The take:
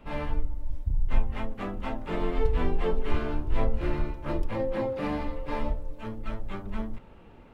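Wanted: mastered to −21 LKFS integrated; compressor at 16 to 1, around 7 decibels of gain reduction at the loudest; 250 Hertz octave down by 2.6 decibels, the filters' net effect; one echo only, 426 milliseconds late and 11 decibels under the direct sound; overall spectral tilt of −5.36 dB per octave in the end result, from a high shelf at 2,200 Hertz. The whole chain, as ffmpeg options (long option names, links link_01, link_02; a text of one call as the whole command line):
ffmpeg -i in.wav -af "equalizer=frequency=250:width_type=o:gain=-3.5,highshelf=frequency=2200:gain=4.5,acompressor=threshold=-23dB:ratio=16,aecho=1:1:426:0.282,volume=14dB" out.wav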